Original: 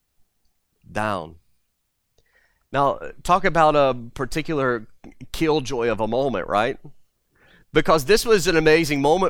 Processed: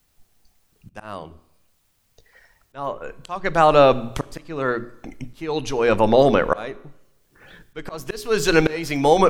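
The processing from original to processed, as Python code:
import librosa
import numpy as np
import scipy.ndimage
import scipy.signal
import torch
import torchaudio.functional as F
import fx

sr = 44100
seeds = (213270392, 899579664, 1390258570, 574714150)

y = fx.hum_notches(x, sr, base_hz=60, count=7)
y = fx.auto_swell(y, sr, attack_ms=795.0)
y = fx.rev_schroeder(y, sr, rt60_s=0.9, comb_ms=28, drr_db=18.0)
y = y * 10.0 ** (7.5 / 20.0)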